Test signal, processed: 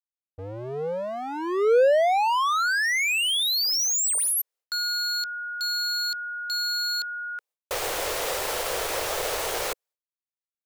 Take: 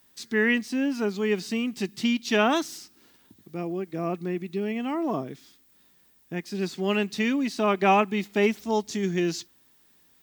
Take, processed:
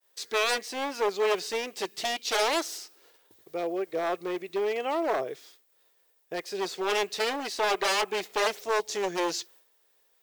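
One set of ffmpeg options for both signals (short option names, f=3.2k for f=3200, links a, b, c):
-af "aeval=exprs='0.0708*(abs(mod(val(0)/0.0708+3,4)-2)-1)':c=same,agate=range=-33dB:threshold=-53dB:ratio=3:detection=peak,lowshelf=f=330:t=q:w=3:g=-13,volume=2dB"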